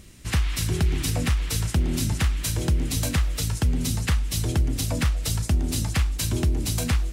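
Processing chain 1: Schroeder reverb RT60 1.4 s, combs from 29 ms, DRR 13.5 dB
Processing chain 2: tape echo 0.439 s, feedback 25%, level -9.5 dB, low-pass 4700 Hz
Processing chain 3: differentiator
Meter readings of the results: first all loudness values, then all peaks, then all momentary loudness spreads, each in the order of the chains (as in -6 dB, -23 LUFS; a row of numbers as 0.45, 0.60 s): -25.0, -25.0, -32.0 LUFS; -13.0, -12.5, -14.0 dBFS; 2, 2, 4 LU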